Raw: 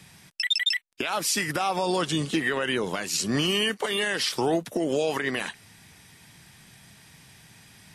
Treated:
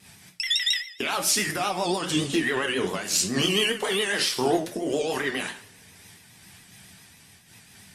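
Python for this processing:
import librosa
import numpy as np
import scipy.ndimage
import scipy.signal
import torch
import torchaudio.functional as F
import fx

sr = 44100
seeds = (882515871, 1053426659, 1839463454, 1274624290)

y = fx.high_shelf(x, sr, hz=4400.0, db=4.5)
y = fx.rev_double_slope(y, sr, seeds[0], early_s=0.41, late_s=1.9, knee_db=-25, drr_db=2.0)
y = fx.vibrato(y, sr, rate_hz=7.3, depth_cents=91.0)
y = fx.cheby_harmonics(y, sr, harmonics=(8,), levels_db=(-38,), full_scale_db=-8.0)
y = fx.am_noise(y, sr, seeds[1], hz=5.7, depth_pct=65)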